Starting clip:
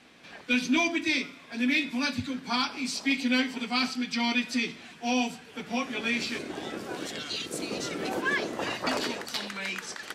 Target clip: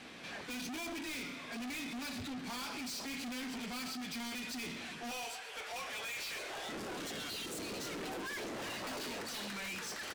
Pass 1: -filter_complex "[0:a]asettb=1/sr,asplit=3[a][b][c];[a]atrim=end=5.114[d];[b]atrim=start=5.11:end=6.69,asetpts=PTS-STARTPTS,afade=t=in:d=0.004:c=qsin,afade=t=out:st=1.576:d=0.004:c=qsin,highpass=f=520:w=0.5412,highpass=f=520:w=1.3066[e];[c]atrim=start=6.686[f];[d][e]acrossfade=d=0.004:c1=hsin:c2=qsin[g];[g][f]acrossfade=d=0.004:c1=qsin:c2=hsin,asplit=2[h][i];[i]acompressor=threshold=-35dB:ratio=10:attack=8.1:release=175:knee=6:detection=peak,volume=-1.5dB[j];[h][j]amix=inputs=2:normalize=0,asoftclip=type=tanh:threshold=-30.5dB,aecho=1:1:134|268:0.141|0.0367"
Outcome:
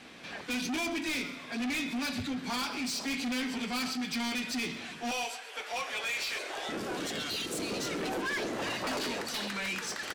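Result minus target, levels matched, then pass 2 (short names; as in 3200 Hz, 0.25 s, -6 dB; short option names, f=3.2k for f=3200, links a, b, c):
soft clip: distortion -4 dB
-filter_complex "[0:a]asettb=1/sr,asplit=3[a][b][c];[a]atrim=end=5.114[d];[b]atrim=start=5.11:end=6.69,asetpts=PTS-STARTPTS,afade=t=in:d=0.004:c=qsin,afade=t=out:st=1.576:d=0.004:c=qsin,highpass=f=520:w=0.5412,highpass=f=520:w=1.3066[e];[c]atrim=start=6.686[f];[d][e]acrossfade=d=0.004:c1=hsin:c2=qsin[g];[g][f]acrossfade=d=0.004:c1=qsin:c2=hsin,asplit=2[h][i];[i]acompressor=threshold=-35dB:ratio=10:attack=8.1:release=175:knee=6:detection=peak,volume=-1.5dB[j];[h][j]amix=inputs=2:normalize=0,asoftclip=type=tanh:threshold=-40.5dB,aecho=1:1:134|268:0.141|0.0367"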